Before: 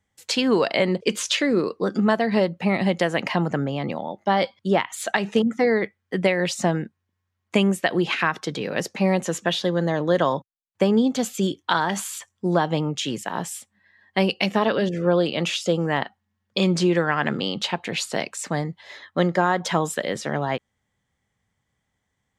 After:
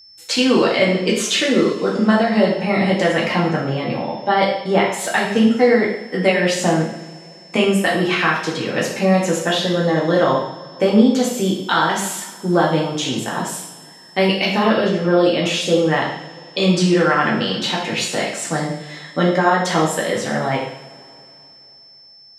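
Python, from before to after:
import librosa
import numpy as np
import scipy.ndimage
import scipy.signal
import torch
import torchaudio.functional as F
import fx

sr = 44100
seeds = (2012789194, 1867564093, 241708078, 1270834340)

y = fx.rev_double_slope(x, sr, seeds[0], early_s=0.69, late_s=3.3, knee_db=-22, drr_db=-4.5)
y = y + 10.0 ** (-43.0 / 20.0) * np.sin(2.0 * np.pi * 5300.0 * np.arange(len(y)) / sr)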